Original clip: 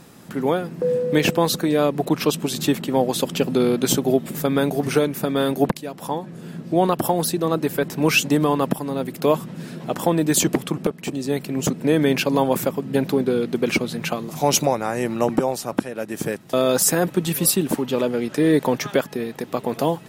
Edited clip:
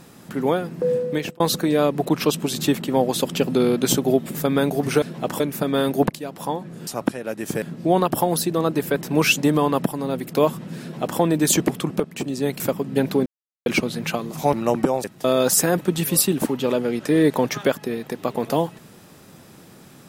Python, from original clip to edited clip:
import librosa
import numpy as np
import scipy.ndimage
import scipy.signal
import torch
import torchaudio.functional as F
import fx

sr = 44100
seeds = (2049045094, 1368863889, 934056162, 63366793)

y = fx.edit(x, sr, fx.fade_out_span(start_s=0.94, length_s=0.46),
    fx.duplicate(start_s=9.68, length_s=0.38, to_s=5.02),
    fx.cut(start_s=11.47, length_s=1.11),
    fx.silence(start_s=13.24, length_s=0.4),
    fx.cut(start_s=14.51, length_s=0.56),
    fx.move(start_s=15.58, length_s=0.75, to_s=6.49), tone=tone)